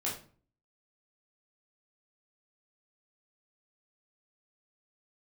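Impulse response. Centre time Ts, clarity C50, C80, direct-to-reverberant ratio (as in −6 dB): 32 ms, 6.5 dB, 11.5 dB, −6.0 dB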